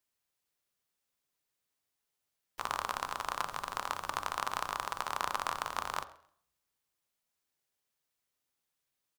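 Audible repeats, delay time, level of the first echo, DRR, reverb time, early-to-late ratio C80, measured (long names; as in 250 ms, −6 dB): 2, 132 ms, −23.5 dB, 10.5 dB, 0.60 s, 17.5 dB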